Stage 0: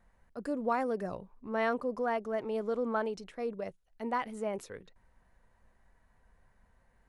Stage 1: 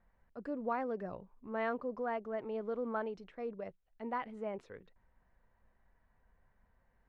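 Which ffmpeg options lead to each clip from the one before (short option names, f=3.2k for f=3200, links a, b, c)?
-af "lowpass=2.9k,volume=-5dB"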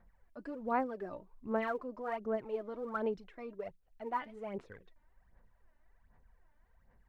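-af "aphaser=in_gain=1:out_gain=1:delay=3.4:decay=0.64:speed=1.3:type=sinusoidal,volume=-2dB"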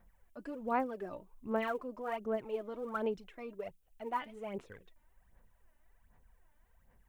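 -af "aexciter=amount=1.3:drive=7.1:freq=2.5k"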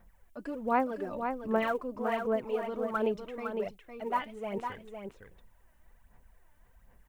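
-af "aecho=1:1:507:0.473,volume=5dB"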